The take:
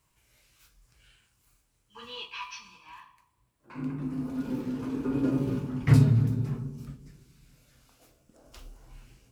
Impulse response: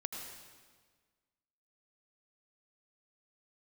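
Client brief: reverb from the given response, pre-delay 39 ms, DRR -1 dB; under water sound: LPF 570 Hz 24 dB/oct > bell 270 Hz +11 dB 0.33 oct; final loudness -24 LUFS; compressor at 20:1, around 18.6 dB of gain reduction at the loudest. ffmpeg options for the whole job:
-filter_complex "[0:a]acompressor=threshold=-32dB:ratio=20,asplit=2[a][b];[1:a]atrim=start_sample=2205,adelay=39[c];[b][c]afir=irnorm=-1:irlink=0,volume=1dB[d];[a][d]amix=inputs=2:normalize=0,lowpass=f=570:w=0.5412,lowpass=f=570:w=1.3066,equalizer=f=270:t=o:w=0.33:g=11,volume=2.5dB"

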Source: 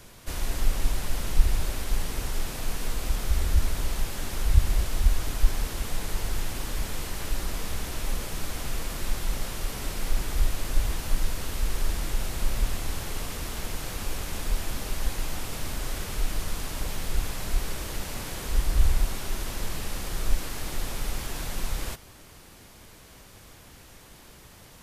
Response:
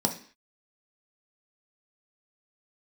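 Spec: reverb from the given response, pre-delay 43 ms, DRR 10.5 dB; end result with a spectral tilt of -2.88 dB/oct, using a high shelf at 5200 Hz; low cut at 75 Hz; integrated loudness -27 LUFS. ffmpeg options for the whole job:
-filter_complex "[0:a]highpass=75,highshelf=f=5.2k:g=4.5,asplit=2[a][b];[1:a]atrim=start_sample=2205,adelay=43[c];[b][c]afir=irnorm=-1:irlink=0,volume=-19.5dB[d];[a][d]amix=inputs=2:normalize=0,volume=5.5dB"

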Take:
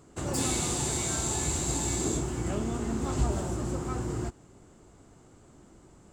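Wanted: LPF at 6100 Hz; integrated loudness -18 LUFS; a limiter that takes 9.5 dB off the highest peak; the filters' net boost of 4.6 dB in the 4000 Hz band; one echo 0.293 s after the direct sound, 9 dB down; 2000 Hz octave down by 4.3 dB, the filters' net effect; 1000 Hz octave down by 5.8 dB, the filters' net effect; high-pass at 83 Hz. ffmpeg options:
-af "highpass=83,lowpass=6.1k,equalizer=f=1k:t=o:g=-7,equalizer=f=2k:t=o:g=-6,equalizer=f=4k:t=o:g=8,alimiter=level_in=3.5dB:limit=-24dB:level=0:latency=1,volume=-3.5dB,aecho=1:1:293:0.355,volume=17.5dB"

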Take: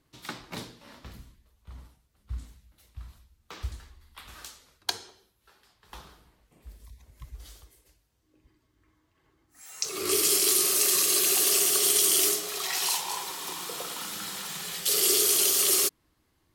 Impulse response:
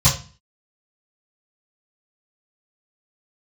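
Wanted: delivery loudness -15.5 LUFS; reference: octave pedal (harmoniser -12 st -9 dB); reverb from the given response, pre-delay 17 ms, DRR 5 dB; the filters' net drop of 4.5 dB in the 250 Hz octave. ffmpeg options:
-filter_complex "[0:a]equalizer=f=250:t=o:g=-8.5,asplit=2[a][b];[1:a]atrim=start_sample=2205,adelay=17[c];[b][c]afir=irnorm=-1:irlink=0,volume=-23dB[d];[a][d]amix=inputs=2:normalize=0,asplit=2[e][f];[f]asetrate=22050,aresample=44100,atempo=2,volume=-9dB[g];[e][g]amix=inputs=2:normalize=0,volume=7dB"

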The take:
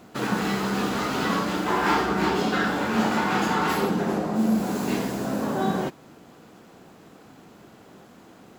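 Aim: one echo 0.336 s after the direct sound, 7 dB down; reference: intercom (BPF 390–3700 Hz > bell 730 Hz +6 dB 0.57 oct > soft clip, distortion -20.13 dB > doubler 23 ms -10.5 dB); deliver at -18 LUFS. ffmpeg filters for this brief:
-filter_complex "[0:a]highpass=390,lowpass=3.7k,equalizer=f=730:t=o:w=0.57:g=6,aecho=1:1:336:0.447,asoftclip=threshold=-15dB,asplit=2[a][b];[b]adelay=23,volume=-10.5dB[c];[a][c]amix=inputs=2:normalize=0,volume=7.5dB"

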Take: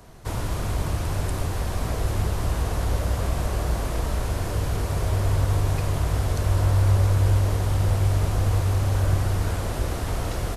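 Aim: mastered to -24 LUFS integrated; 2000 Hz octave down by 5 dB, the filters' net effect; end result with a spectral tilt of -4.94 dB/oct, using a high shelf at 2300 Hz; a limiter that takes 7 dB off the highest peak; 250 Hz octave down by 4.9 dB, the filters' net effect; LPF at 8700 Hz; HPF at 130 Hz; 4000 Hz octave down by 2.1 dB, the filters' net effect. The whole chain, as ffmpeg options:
-af "highpass=130,lowpass=8.7k,equalizer=f=250:t=o:g=-6.5,equalizer=f=2k:t=o:g=-8,highshelf=f=2.3k:g=4.5,equalizer=f=4k:t=o:g=-4.5,volume=9dB,alimiter=limit=-14.5dB:level=0:latency=1"

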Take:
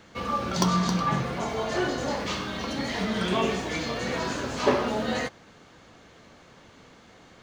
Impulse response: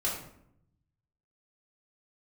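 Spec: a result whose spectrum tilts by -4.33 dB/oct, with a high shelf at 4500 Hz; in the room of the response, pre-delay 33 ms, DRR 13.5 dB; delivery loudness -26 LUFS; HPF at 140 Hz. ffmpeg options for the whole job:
-filter_complex "[0:a]highpass=140,highshelf=f=4.5k:g=-7.5,asplit=2[a][b];[1:a]atrim=start_sample=2205,adelay=33[c];[b][c]afir=irnorm=-1:irlink=0,volume=-20dB[d];[a][d]amix=inputs=2:normalize=0,volume=2dB"

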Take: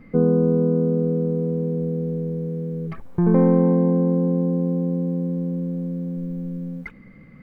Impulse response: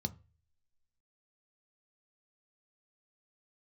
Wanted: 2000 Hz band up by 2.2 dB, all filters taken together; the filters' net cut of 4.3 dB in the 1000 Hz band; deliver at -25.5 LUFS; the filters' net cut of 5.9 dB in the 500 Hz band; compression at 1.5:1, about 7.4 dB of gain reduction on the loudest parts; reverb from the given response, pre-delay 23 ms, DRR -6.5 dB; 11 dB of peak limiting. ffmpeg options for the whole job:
-filter_complex "[0:a]equalizer=f=500:t=o:g=-6,equalizer=f=1k:t=o:g=-4,equalizer=f=2k:t=o:g=4,acompressor=threshold=-35dB:ratio=1.5,alimiter=level_in=2dB:limit=-24dB:level=0:latency=1,volume=-2dB,asplit=2[a][b];[1:a]atrim=start_sample=2205,adelay=23[c];[b][c]afir=irnorm=-1:irlink=0,volume=6.5dB[d];[a][d]amix=inputs=2:normalize=0,volume=-10dB"

